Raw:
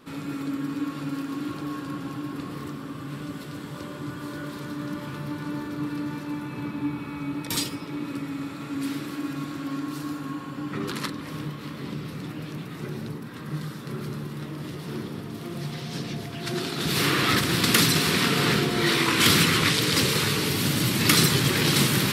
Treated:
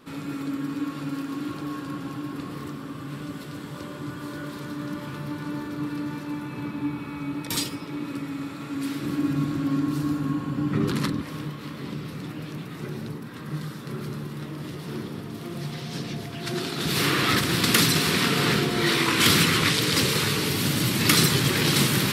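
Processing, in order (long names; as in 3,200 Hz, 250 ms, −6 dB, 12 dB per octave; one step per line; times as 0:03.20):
0:09.03–0:11.22: low-shelf EQ 300 Hz +12 dB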